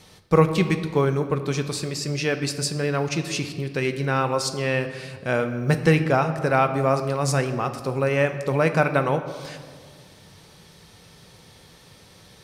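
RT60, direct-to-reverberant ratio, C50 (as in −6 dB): 1.8 s, 7.5 dB, 10.5 dB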